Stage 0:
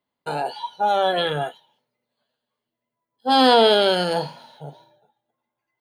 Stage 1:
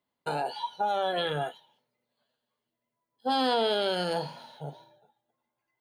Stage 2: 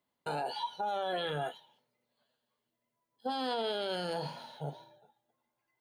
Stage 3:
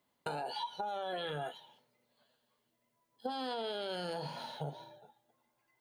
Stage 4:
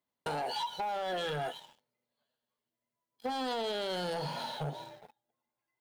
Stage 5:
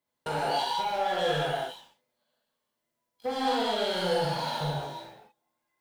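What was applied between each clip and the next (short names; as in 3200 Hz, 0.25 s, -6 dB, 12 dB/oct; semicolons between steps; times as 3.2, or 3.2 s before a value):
compressor 2.5:1, threshold -26 dBFS, peak gain reduction 10 dB; gain -2 dB
limiter -26.5 dBFS, peak gain reduction 9.5 dB
compressor, threshold -41 dBFS, peak gain reduction 10 dB; gain +5 dB
sample leveller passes 3; gain -5 dB
reverb, pre-delay 3 ms, DRR -5.5 dB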